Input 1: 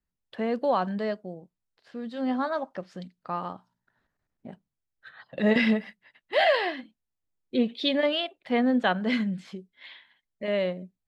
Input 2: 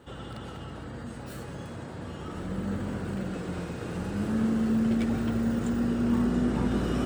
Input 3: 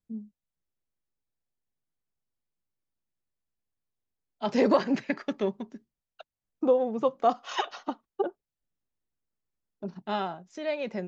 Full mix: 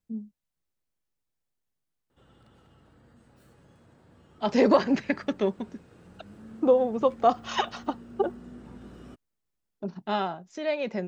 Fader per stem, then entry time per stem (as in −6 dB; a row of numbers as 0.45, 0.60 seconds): muted, −19.0 dB, +2.5 dB; muted, 2.10 s, 0.00 s